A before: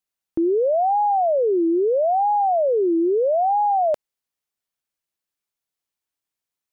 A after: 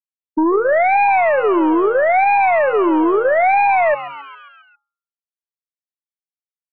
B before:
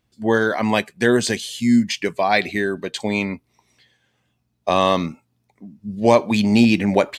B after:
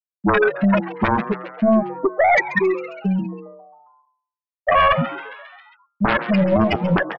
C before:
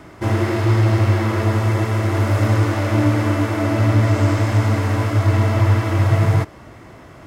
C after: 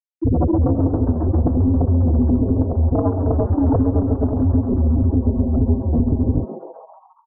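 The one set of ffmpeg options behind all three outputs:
-filter_complex "[0:a]lowpass=6000,afftfilt=real='re*gte(hypot(re,im),0.708)':imag='im*gte(hypot(re,im),0.708)':win_size=1024:overlap=0.75,afreqshift=-19,equalizer=frequency=490:width_type=o:width=0.51:gain=-4,aeval=exprs='0.631*(cos(1*acos(clip(val(0)/0.631,-1,1)))-cos(1*PI/2))+0.01*(cos(3*acos(clip(val(0)/0.631,-1,1)))-cos(3*PI/2))+0.0178*(cos(4*acos(clip(val(0)/0.631,-1,1)))-cos(4*PI/2))+0.224*(cos(7*acos(clip(val(0)/0.631,-1,1)))-cos(7*PI/2))+0.00447*(cos(8*acos(clip(val(0)/0.631,-1,1)))-cos(8*PI/2))':channel_layout=same,bandreject=frequency=480:width=12,bandreject=frequency=183.3:width_type=h:width=4,bandreject=frequency=366.6:width_type=h:width=4,bandreject=frequency=549.9:width_type=h:width=4,acompressor=threshold=-20dB:ratio=8,equalizer=frequency=1500:width_type=o:width=0.99:gain=7,asplit=7[link_01][link_02][link_03][link_04][link_05][link_06][link_07];[link_02]adelay=135,afreqshift=140,volume=-16dB[link_08];[link_03]adelay=270,afreqshift=280,volume=-20.4dB[link_09];[link_04]adelay=405,afreqshift=420,volume=-24.9dB[link_10];[link_05]adelay=540,afreqshift=560,volume=-29.3dB[link_11];[link_06]adelay=675,afreqshift=700,volume=-33.7dB[link_12];[link_07]adelay=810,afreqshift=840,volume=-38.2dB[link_13];[link_01][link_08][link_09][link_10][link_11][link_12][link_13]amix=inputs=7:normalize=0,alimiter=level_in=14.5dB:limit=-1dB:release=50:level=0:latency=1,volume=-6.5dB"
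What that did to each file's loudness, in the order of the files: +5.0, 0.0, −1.0 LU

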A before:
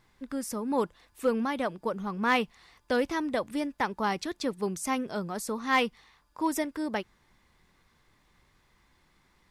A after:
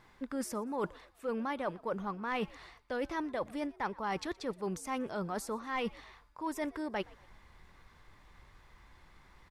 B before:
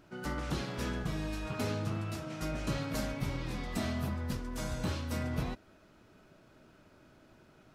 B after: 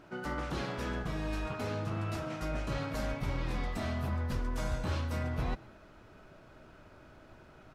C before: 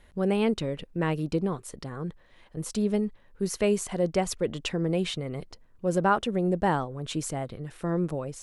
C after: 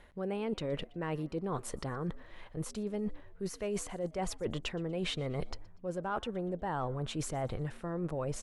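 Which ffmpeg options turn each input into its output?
-filter_complex "[0:a]acontrast=78,highshelf=frequency=6700:gain=8,asplit=2[link_01][link_02];[link_02]highpass=frequency=720:poles=1,volume=6dB,asoftclip=type=tanh:threshold=-6dB[link_03];[link_01][link_03]amix=inputs=2:normalize=0,lowpass=frequency=1200:poles=1,volume=-6dB,areverse,acompressor=threshold=-32dB:ratio=10,areverse,asubboost=boost=2.5:cutoff=120,asplit=2[link_04][link_05];[link_05]asplit=3[link_06][link_07][link_08];[link_06]adelay=120,afreqshift=82,volume=-24dB[link_09];[link_07]adelay=240,afreqshift=164,volume=-31.7dB[link_10];[link_08]adelay=360,afreqshift=246,volume=-39.5dB[link_11];[link_09][link_10][link_11]amix=inputs=3:normalize=0[link_12];[link_04][link_12]amix=inputs=2:normalize=0"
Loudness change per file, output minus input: −7.0, +0.5, −8.5 LU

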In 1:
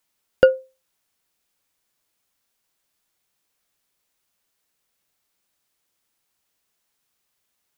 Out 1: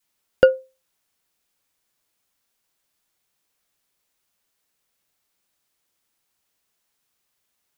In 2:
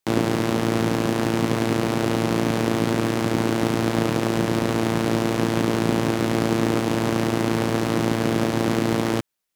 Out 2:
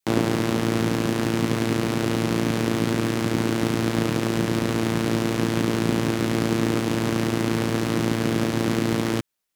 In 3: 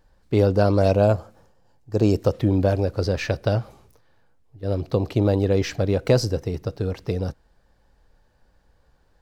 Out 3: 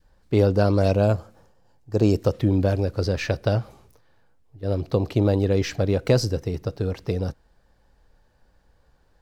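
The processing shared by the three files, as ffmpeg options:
-af "adynamicequalizer=threshold=0.0282:dfrequency=720:dqfactor=1:tfrequency=720:tqfactor=1:attack=5:release=100:ratio=0.375:range=2.5:mode=cutabove:tftype=bell"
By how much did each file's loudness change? 0.0, −1.0, −0.5 LU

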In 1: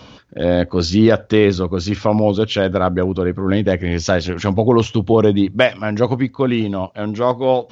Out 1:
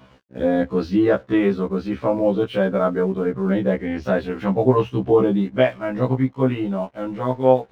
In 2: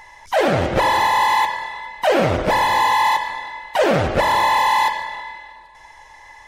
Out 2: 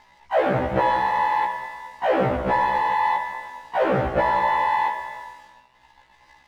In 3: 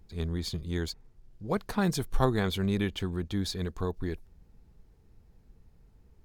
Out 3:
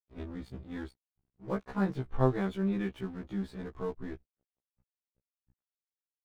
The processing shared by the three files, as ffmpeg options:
-af "lowpass=2000,aeval=exprs='sgn(val(0))*max(abs(val(0))-0.00473,0)':channel_layout=same,afftfilt=real='re*1.73*eq(mod(b,3),0)':imag='im*1.73*eq(mod(b,3),0)':win_size=2048:overlap=0.75,volume=-1dB"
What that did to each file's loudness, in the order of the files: −3.5, −4.5, −3.5 LU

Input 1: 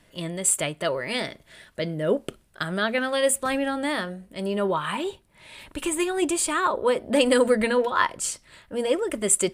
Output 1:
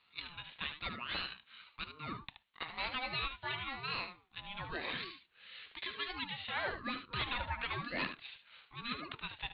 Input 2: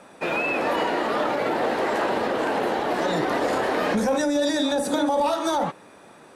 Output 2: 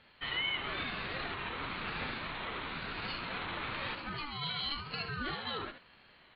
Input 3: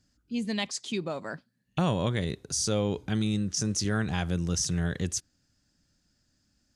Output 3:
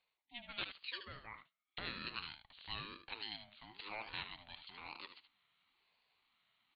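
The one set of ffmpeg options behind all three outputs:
-af "highpass=frequency=220:width=0.5412,highpass=frequency=220:width=1.3066,aderivative,areverse,acompressor=mode=upward:threshold=-54dB:ratio=2.5,areverse,crystalizer=i=0.5:c=0,aeval=exprs='0.708*(cos(1*acos(clip(val(0)/0.708,-1,1)))-cos(1*PI/2))+0.0112*(cos(5*acos(clip(val(0)/0.708,-1,1)))-cos(5*PI/2))':channel_layout=same,aresample=11025,aeval=exprs='0.0316*(abs(mod(val(0)/0.0316+3,4)-2)-1)':channel_layout=same,aresample=44100,aecho=1:1:75:0.335,aresample=8000,aresample=44100,aeval=exprs='val(0)*sin(2*PI*590*n/s+590*0.3/1*sin(2*PI*1*n/s))':channel_layout=same,volume=4.5dB"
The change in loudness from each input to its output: −15.5, −13.5, −17.0 LU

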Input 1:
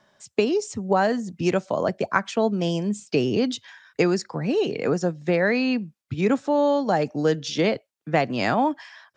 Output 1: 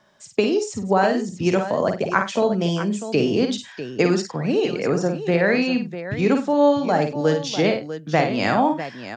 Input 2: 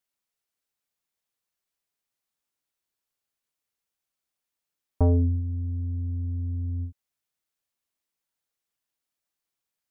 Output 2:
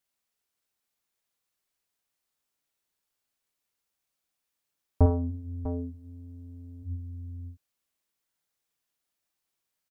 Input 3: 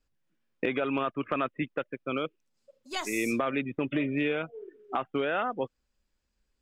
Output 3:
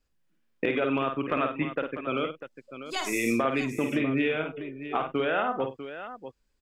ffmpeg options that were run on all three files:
-af "aecho=1:1:52|97|647:0.501|0.141|0.266,volume=1.5dB"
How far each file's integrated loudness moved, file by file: +2.5, −3.5, +2.5 LU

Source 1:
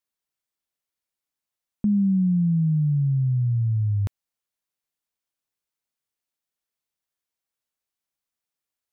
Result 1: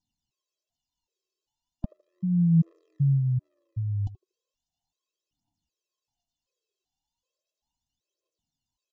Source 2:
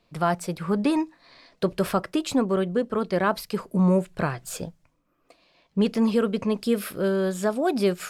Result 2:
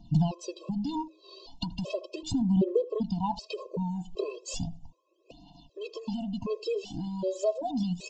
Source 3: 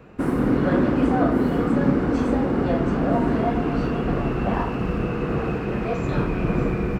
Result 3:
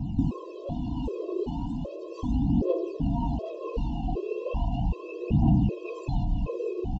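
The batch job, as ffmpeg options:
-filter_complex "[0:a]afftfilt=real='re*(1-between(b*sr/4096,1100,2500))':imag='im*(1-between(b*sr/4096,1100,2500))':win_size=4096:overlap=0.75,lowshelf=frequency=470:gain=7,acrossover=split=1200[link_01][link_02];[link_01]alimiter=limit=-13dB:level=0:latency=1:release=25[link_03];[link_03][link_02]amix=inputs=2:normalize=0,acompressor=threshold=-30dB:ratio=6,aphaser=in_gain=1:out_gain=1:delay=2.7:decay=0.68:speed=0.36:type=triangular,asplit=2[link_04][link_05];[link_05]adelay=79,lowpass=frequency=1400:poles=1,volume=-17dB,asplit=2[link_06][link_07];[link_07]adelay=79,lowpass=frequency=1400:poles=1,volume=0.32,asplit=2[link_08][link_09];[link_09]adelay=79,lowpass=frequency=1400:poles=1,volume=0.32[link_10];[link_04][link_06][link_08][link_10]amix=inputs=4:normalize=0,aresample=16000,aresample=44100,afftfilt=real='re*gt(sin(2*PI*1.3*pts/sr)*(1-2*mod(floor(b*sr/1024/340),2)),0)':imag='im*gt(sin(2*PI*1.3*pts/sr)*(1-2*mod(floor(b*sr/1024/340),2)),0)':win_size=1024:overlap=0.75,volume=4dB"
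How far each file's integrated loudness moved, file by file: −3.5, −7.0, −7.0 LU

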